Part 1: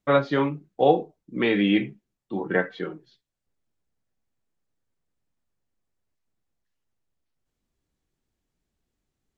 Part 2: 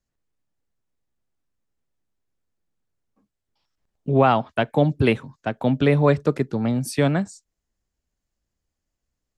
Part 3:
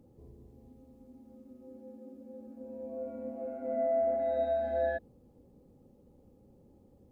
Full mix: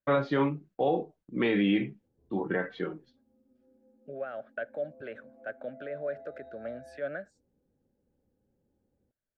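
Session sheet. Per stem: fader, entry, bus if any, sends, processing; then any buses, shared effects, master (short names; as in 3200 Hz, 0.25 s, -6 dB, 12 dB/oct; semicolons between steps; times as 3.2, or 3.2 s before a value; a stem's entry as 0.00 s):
-2.0 dB, 0.00 s, no send, gate -53 dBFS, range -14 dB; high shelf 4300 Hz -7 dB
-1.5 dB, 0.00 s, no send, limiter -16.5 dBFS, peak gain reduction 11.5 dB; double band-pass 950 Hz, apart 1.4 oct
-15.0 dB, 2.00 s, no send, limiter -28.5 dBFS, peak gain reduction 6.5 dB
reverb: off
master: limiter -17 dBFS, peak gain reduction 9.5 dB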